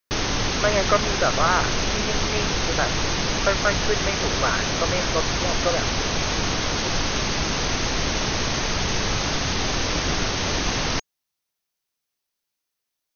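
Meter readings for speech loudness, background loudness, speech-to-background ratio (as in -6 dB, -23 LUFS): -26.0 LUFS, -23.5 LUFS, -2.5 dB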